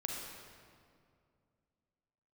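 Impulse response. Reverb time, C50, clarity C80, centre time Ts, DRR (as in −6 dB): 2.3 s, 0.0 dB, 2.0 dB, 99 ms, −1.0 dB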